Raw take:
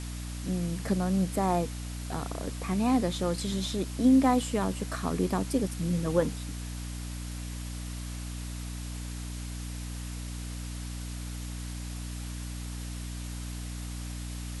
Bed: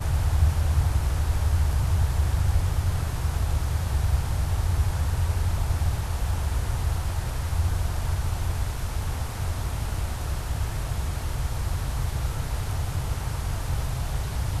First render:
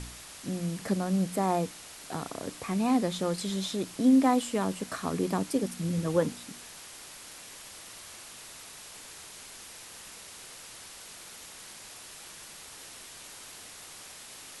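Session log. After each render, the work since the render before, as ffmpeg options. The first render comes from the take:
-af "bandreject=f=60:t=h:w=4,bandreject=f=120:t=h:w=4,bandreject=f=180:t=h:w=4,bandreject=f=240:t=h:w=4,bandreject=f=300:t=h:w=4"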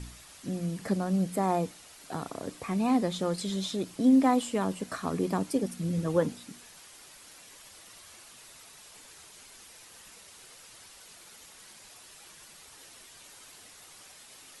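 -af "afftdn=nr=7:nf=-47"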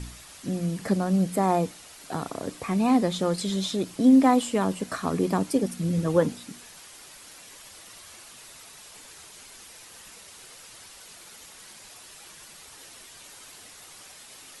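-af "volume=4.5dB"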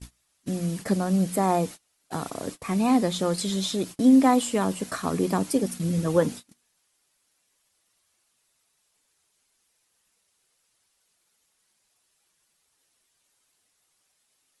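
-af "highshelf=f=6.2k:g=5.5,agate=range=-27dB:threshold=-35dB:ratio=16:detection=peak"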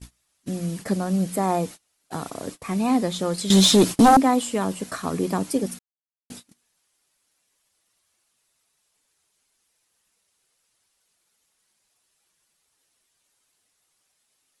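-filter_complex "[0:a]asettb=1/sr,asplit=3[a][b][c];[a]atrim=end=3.504[d];[b]atrim=start=3.5:end=4.17,asetpts=PTS-STARTPTS,afade=t=in:d=0.004:c=qsin,afade=t=out:st=0.666:d=0.004:c=qsin,aeval=exprs='0.376*sin(PI/2*3.16*val(0)/0.376)':c=same[e];[c]atrim=start=4.166[f];[d][e]acrossfade=d=0.004:c1=hsin:c2=qsin[g];[g][f]acrossfade=d=0.004:c1=qsin:c2=hsin,asplit=3[h][i][j];[h]atrim=end=5.79,asetpts=PTS-STARTPTS,afade=t=out:st=5.786:d=0.004:c=hsin[k];[i]atrim=start=5.79:end=6.3,asetpts=PTS-STARTPTS,volume=0[l];[j]atrim=start=6.3,asetpts=PTS-STARTPTS,afade=t=in:d=0.004:c=hsin[m];[k][l][m]concat=n=3:v=0:a=1"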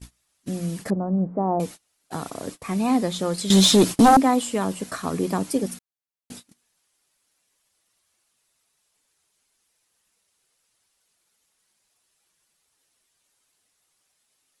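-filter_complex "[0:a]asettb=1/sr,asplit=3[a][b][c];[a]atrim=end=0.904[d];[b]atrim=start=0.9:end=1.6,asetpts=PTS-STARTPTS,afade=t=in:d=0.004:c=qsin,afade=t=out:st=0.696:d=0.004:c=qsin,lowpass=f=1k:w=0.5412,lowpass=f=1k:w=1.3066[e];[c]atrim=start=1.596[f];[d][e]acrossfade=d=0.004:c1=hsin:c2=qsin[g];[g][f]acrossfade=d=0.004:c1=qsin:c2=hsin"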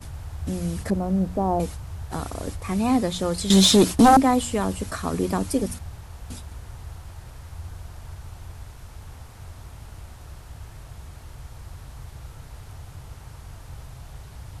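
-filter_complex "[1:a]volume=-12.5dB[a];[0:a][a]amix=inputs=2:normalize=0"

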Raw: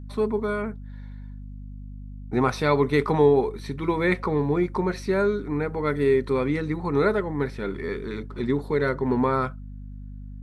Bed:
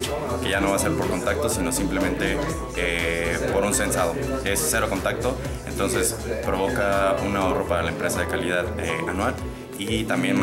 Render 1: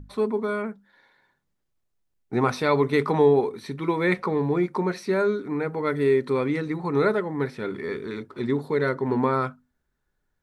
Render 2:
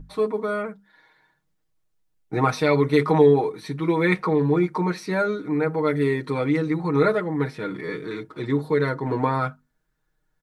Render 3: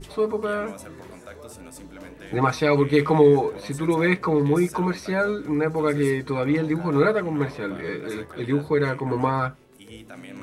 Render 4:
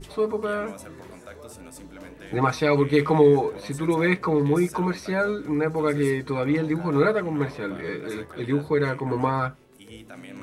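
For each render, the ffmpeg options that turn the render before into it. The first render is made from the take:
-af "bandreject=f=50:t=h:w=6,bandreject=f=100:t=h:w=6,bandreject=f=150:t=h:w=6,bandreject=f=200:t=h:w=6,bandreject=f=250:t=h:w=6"
-af "aecho=1:1:6.4:0.79"
-filter_complex "[1:a]volume=-18.5dB[a];[0:a][a]amix=inputs=2:normalize=0"
-af "volume=-1dB"

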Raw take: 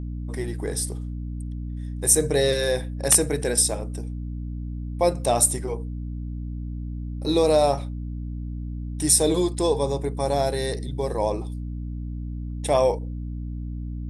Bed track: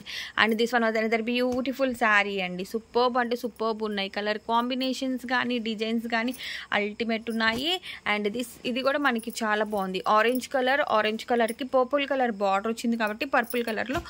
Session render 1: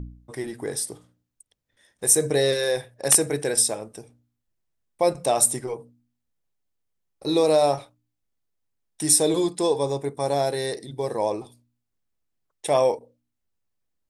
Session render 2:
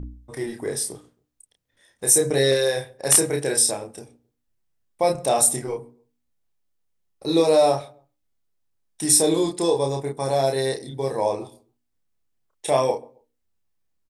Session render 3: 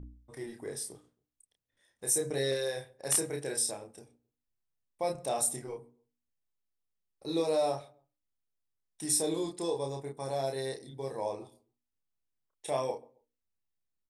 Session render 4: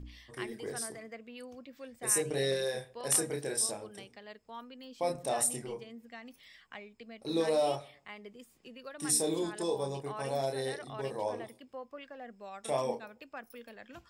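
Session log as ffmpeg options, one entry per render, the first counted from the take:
-af "bandreject=f=60:t=h:w=4,bandreject=f=120:t=h:w=4,bandreject=f=180:t=h:w=4,bandreject=f=240:t=h:w=4,bandreject=f=300:t=h:w=4"
-filter_complex "[0:a]asplit=2[a][b];[b]adelay=30,volume=-3dB[c];[a][c]amix=inputs=2:normalize=0,asplit=2[d][e];[e]adelay=135,lowpass=f=1.1k:p=1,volume=-22.5dB,asplit=2[f][g];[g]adelay=135,lowpass=f=1.1k:p=1,volume=0.3[h];[d][f][h]amix=inputs=3:normalize=0"
-af "volume=-12dB"
-filter_complex "[1:a]volume=-21.5dB[a];[0:a][a]amix=inputs=2:normalize=0"

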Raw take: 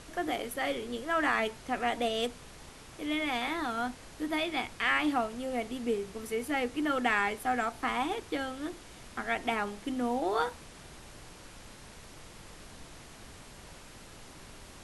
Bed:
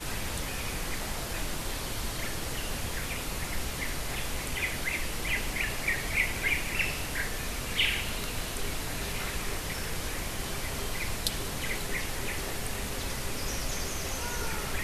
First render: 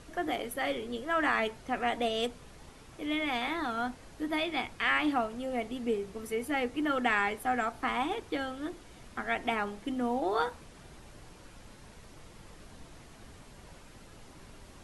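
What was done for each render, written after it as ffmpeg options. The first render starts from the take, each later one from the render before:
-af "afftdn=nr=6:nf=-51"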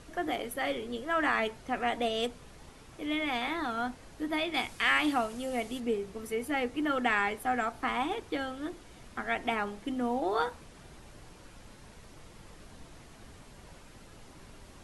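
-filter_complex "[0:a]asettb=1/sr,asplit=3[a][b][c];[a]atrim=end=4.544[d];[b]atrim=start=4.54:end=5.8,asetpts=PTS-STARTPTS,afade=t=in:d=0.004:c=qsin,afade=t=out:st=1.256:d=0.004:c=qsin,highshelf=f=4.2k:g=11[e];[c]atrim=start=5.796[f];[d][e]acrossfade=d=0.004:c1=hsin:c2=qsin[g];[g][f]acrossfade=d=0.004:c1=qsin:c2=hsin"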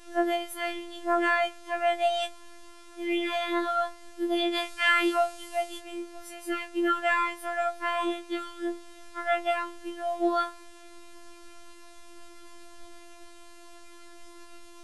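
-af "afftfilt=real='hypot(re,im)*cos(PI*b)':imag='0':win_size=1024:overlap=0.75,afftfilt=real='re*4*eq(mod(b,16),0)':imag='im*4*eq(mod(b,16),0)':win_size=2048:overlap=0.75"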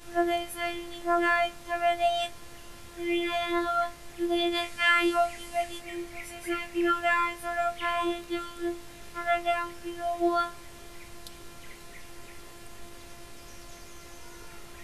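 -filter_complex "[1:a]volume=-16dB[a];[0:a][a]amix=inputs=2:normalize=0"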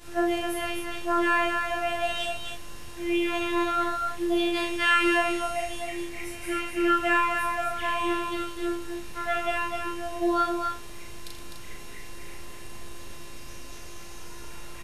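-filter_complex "[0:a]asplit=2[a][b];[b]adelay=37,volume=-2dB[c];[a][c]amix=inputs=2:normalize=0,aecho=1:1:81.63|253.6:0.316|0.562"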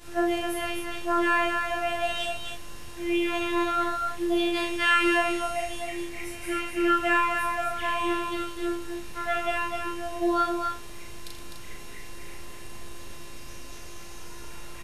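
-af anull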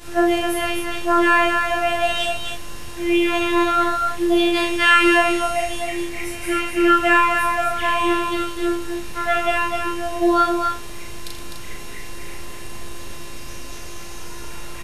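-af "volume=8dB"

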